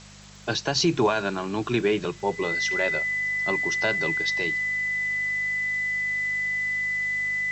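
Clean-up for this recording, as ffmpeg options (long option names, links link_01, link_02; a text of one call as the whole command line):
ffmpeg -i in.wav -af "adeclick=threshold=4,bandreject=frequency=50.5:width_type=h:width=4,bandreject=frequency=101:width_type=h:width=4,bandreject=frequency=151.5:width_type=h:width=4,bandreject=frequency=202:width_type=h:width=4,bandreject=frequency=2000:width=30,afwtdn=0.005" out.wav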